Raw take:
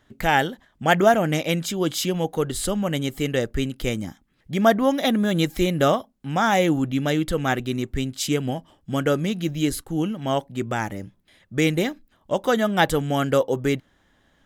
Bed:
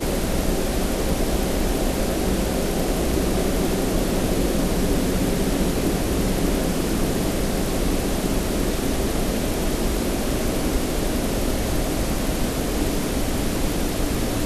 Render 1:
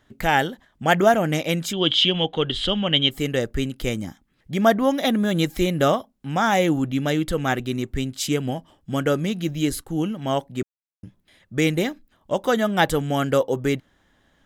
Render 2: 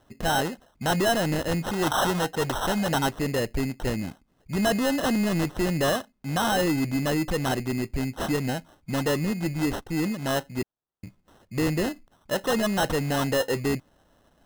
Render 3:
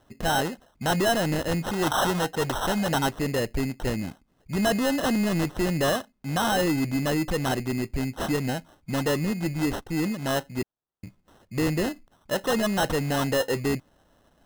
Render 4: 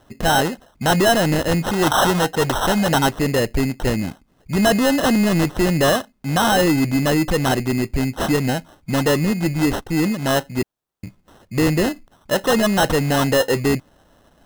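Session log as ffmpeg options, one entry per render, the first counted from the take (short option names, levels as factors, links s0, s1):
-filter_complex "[0:a]asettb=1/sr,asplit=3[s0][s1][s2];[s0]atrim=end=1.734[s3];[s1]atrim=start=1.73:end=3.11,asetpts=PTS-STARTPTS,afade=t=in:d=0.004:c=qsin,afade=t=out:st=1.376:d=0.004:c=qsin,lowpass=f=3200:t=q:w=9.8[s4];[s2]atrim=start=3.106[s5];[s3][s4]acrossfade=d=0.004:c1=hsin:c2=qsin[s6];[s6][s5]acrossfade=d=0.004:c1=qsin:c2=hsin,asplit=3[s7][s8][s9];[s7]atrim=end=10.63,asetpts=PTS-STARTPTS,afade=t=out:st=10.626:d=0.004:c=hsin[s10];[s8]atrim=start=10.63:end=11.03,asetpts=PTS-STARTPTS,volume=0[s11];[s9]atrim=start=11.03,asetpts=PTS-STARTPTS,afade=t=in:d=0.004:c=hsin[s12];[s10][s11][s12]concat=n=3:v=0:a=1"
-af "acrusher=samples=19:mix=1:aa=0.000001,asoftclip=type=tanh:threshold=0.112"
-af anull
-af "volume=2.37"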